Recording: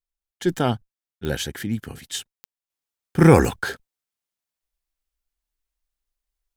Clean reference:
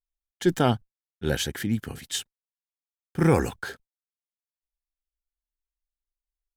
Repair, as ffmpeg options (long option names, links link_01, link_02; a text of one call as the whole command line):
ffmpeg -i in.wav -af "adeclick=threshold=4,asetnsamples=nb_out_samples=441:pad=0,asendcmd='2.7 volume volume -7.5dB',volume=0dB" out.wav